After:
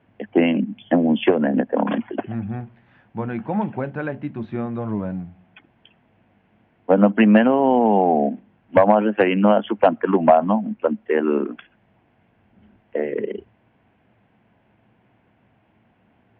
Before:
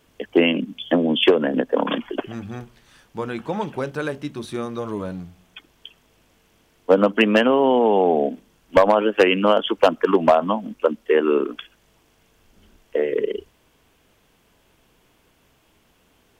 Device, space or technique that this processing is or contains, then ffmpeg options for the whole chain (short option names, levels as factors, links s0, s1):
bass cabinet: -af "highpass=81,equalizer=f=110:t=q:w=4:g=10,equalizer=f=210:t=q:w=4:g=8,equalizer=f=440:t=q:w=4:g=-5,equalizer=f=740:t=q:w=4:g=5,equalizer=f=1200:t=q:w=4:g=-6,lowpass=f=2300:w=0.5412,lowpass=f=2300:w=1.3066"